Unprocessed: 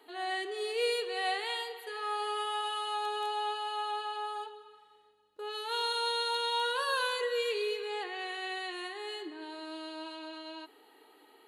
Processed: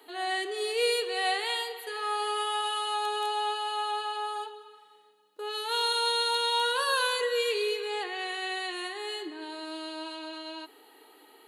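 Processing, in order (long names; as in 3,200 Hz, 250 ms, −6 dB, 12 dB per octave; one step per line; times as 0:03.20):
high-pass filter 190 Hz 24 dB per octave
high-shelf EQ 5,600 Hz +6.5 dB
level +3.5 dB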